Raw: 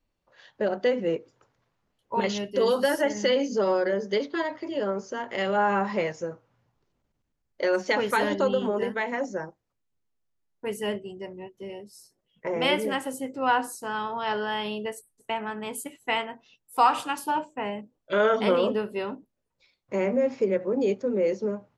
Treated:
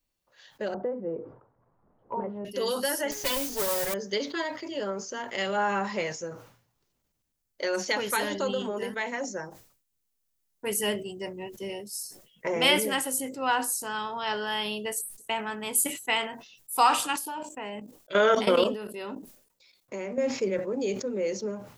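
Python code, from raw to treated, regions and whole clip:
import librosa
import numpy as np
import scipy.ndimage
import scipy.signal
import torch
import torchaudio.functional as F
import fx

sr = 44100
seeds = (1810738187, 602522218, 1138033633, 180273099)

y = fx.chain(x, sr, fx.lowpass(hz=1100.0, slope=24),
    fx.band_squash(depth_pct=70), at=(0.74, 2.45))
y = fx.chain(y, sr, fx.lower_of_two(delay_ms=7.2),
    fx.mod_noise(seeds[0], snr_db=12),
    fx.high_shelf(hz=7300.0, db=-6.5), at=(3.11, 3.94))
y = fx.chain(y, sr, fx.curve_eq(hz=(120.0, 190.0, 320.0, 2200.0), db=(0, 5, 7, 5)),
    fx.level_steps(step_db=16), at=(17.13, 20.18))
y = fx.rider(y, sr, range_db=10, speed_s=2.0)
y = scipy.signal.lfilter([1.0, -0.8], [1.0], y)
y = fx.sustainer(y, sr, db_per_s=99.0)
y = F.gain(torch.from_numpy(y), 7.5).numpy()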